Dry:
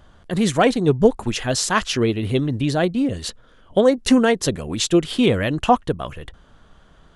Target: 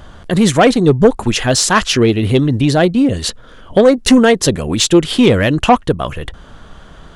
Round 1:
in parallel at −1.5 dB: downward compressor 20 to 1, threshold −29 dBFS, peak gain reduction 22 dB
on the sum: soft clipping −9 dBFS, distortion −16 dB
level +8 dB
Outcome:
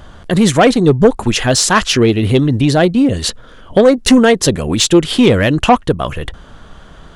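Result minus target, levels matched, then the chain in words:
downward compressor: peak gain reduction −7 dB
in parallel at −1.5 dB: downward compressor 20 to 1, threshold −36.5 dBFS, peak gain reduction 29 dB
on the sum: soft clipping −9 dBFS, distortion −17 dB
level +8 dB

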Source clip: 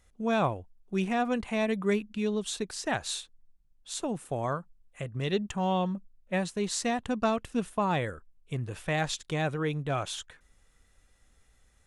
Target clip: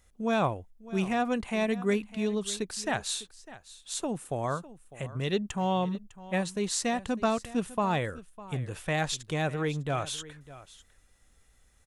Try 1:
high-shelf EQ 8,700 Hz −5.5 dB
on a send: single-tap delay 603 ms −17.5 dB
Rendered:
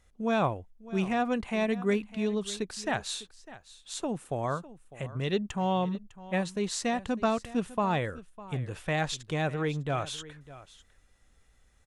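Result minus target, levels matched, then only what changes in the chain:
8,000 Hz band −4.0 dB
change: high-shelf EQ 8,700 Hz +5.5 dB

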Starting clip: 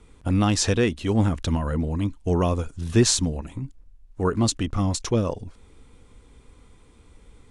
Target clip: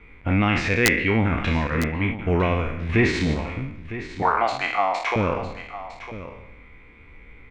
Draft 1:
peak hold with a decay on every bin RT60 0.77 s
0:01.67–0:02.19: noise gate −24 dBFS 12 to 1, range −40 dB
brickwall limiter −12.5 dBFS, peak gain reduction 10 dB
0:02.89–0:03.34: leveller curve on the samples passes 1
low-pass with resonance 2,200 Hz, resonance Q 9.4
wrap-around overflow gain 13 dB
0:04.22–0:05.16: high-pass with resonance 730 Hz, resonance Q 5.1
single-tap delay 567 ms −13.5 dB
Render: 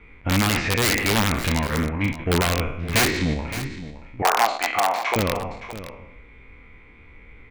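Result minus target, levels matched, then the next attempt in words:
wrap-around overflow: distortion +17 dB; echo 389 ms early
peak hold with a decay on every bin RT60 0.77 s
0:01.67–0:02.19: noise gate −24 dBFS 12 to 1, range −40 dB
brickwall limiter −12.5 dBFS, peak gain reduction 10 dB
0:02.89–0:03.34: leveller curve on the samples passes 1
low-pass with resonance 2,200 Hz, resonance Q 9.4
wrap-around overflow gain 5.5 dB
0:04.22–0:05.16: high-pass with resonance 730 Hz, resonance Q 5.1
single-tap delay 956 ms −13.5 dB

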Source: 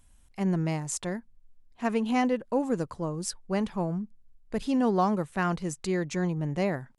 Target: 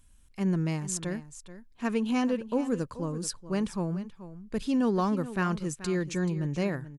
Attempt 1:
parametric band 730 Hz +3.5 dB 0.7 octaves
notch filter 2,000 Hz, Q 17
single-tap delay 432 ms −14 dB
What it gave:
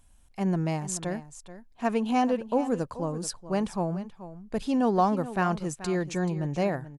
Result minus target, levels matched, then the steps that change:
1,000 Hz band +6.0 dB
change: parametric band 730 Hz −8 dB 0.7 octaves

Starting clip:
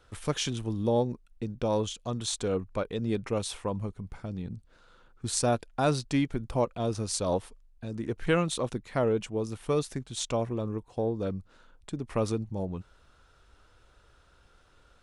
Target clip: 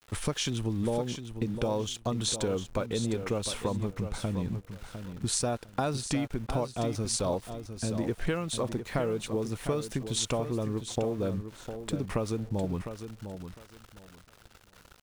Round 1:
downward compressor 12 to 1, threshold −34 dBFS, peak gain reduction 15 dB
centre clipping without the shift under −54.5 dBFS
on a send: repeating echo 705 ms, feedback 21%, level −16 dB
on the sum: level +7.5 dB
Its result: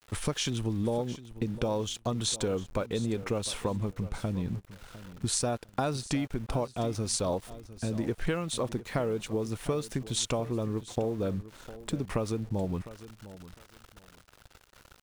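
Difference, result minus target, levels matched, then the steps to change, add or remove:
echo-to-direct −6.5 dB
change: repeating echo 705 ms, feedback 21%, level −9.5 dB

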